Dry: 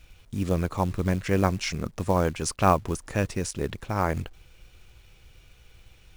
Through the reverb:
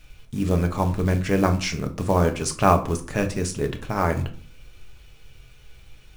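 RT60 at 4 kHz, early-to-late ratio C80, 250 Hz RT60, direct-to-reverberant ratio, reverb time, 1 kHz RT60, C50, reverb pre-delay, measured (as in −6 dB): 0.30 s, 19.0 dB, 0.65 s, 5.0 dB, 0.45 s, 0.45 s, 14.0 dB, 5 ms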